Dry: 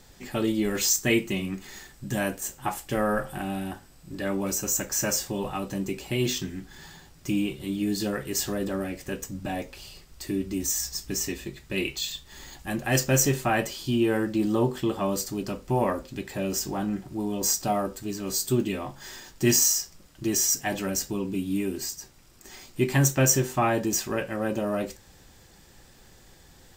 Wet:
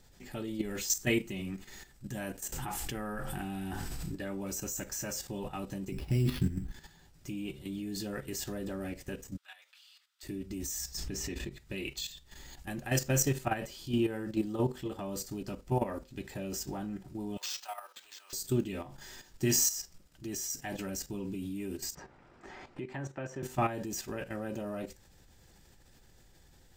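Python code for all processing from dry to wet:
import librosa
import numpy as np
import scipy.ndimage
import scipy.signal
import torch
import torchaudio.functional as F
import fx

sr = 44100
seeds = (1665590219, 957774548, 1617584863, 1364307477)

y = fx.chain(x, sr, fx.peak_eq(hz=580.0, db=-11.5, octaves=0.21),
    fx.env_flatten(amount_pct=70), at=(2.52, 4.15))
y = fx.chain(y, sr, fx.bass_treble(bass_db=14, treble_db=-7),
    fx.sample_hold(seeds[0], rate_hz=7800.0, jitter_pct=0), at=(5.92, 6.72))
y = fx.chain(y, sr, fx.ladder_highpass(hz=1100.0, resonance_pct=45),
    fx.peak_eq(hz=3500.0, db=10.0, octaves=0.55), at=(9.37, 10.23))
y = fx.chain(y, sr, fx.high_shelf(hz=6500.0, db=-10.5),
    fx.pre_swell(db_per_s=31.0), at=(10.97, 11.52))
y = fx.chain(y, sr, fx.highpass(hz=890.0, slope=24),
    fx.resample_bad(factor=4, down='none', up='hold'), at=(17.37, 18.33))
y = fx.chain(y, sr, fx.lowpass(hz=1100.0, slope=12),
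    fx.tilt_eq(slope=4.0),
    fx.band_squash(depth_pct=70), at=(21.95, 23.43))
y = fx.low_shelf(y, sr, hz=120.0, db=6.0)
y = fx.notch(y, sr, hz=1100.0, q=14.0)
y = fx.level_steps(y, sr, step_db=11)
y = y * librosa.db_to_amplitude(-4.5)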